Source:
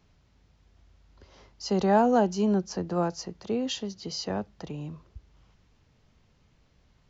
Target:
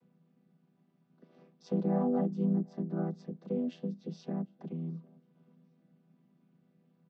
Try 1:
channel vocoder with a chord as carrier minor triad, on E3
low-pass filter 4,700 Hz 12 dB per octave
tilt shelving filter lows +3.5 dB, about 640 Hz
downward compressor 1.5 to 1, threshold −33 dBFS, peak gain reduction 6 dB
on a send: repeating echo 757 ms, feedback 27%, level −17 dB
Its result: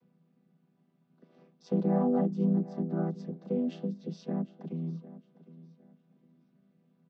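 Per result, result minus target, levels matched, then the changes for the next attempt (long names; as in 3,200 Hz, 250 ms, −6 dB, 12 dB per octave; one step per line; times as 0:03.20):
echo-to-direct +11 dB; downward compressor: peak gain reduction −2.5 dB
change: repeating echo 757 ms, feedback 27%, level −28 dB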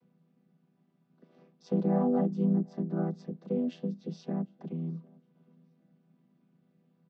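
downward compressor: peak gain reduction −2.5 dB
change: downward compressor 1.5 to 1, threshold −41 dBFS, peak gain reduction 8.5 dB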